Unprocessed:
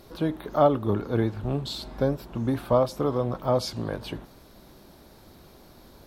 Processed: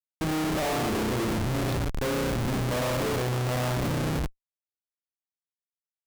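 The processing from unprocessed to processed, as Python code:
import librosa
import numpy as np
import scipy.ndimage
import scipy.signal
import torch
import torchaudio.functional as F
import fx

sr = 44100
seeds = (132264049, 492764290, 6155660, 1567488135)

y = fx.rev_spring(x, sr, rt60_s=1.3, pass_ms=(32,), chirp_ms=30, drr_db=-3.5)
y = fx.schmitt(y, sr, flips_db=-27.0)
y = F.gain(torch.from_numpy(y), -4.5).numpy()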